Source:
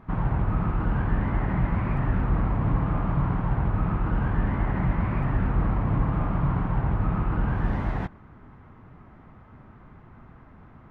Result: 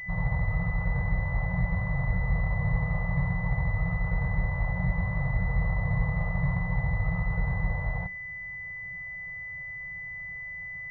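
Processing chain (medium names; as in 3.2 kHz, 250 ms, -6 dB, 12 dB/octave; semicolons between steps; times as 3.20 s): FFT band-reject 190–460 Hz; class-D stage that switches slowly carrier 2 kHz; trim -2.5 dB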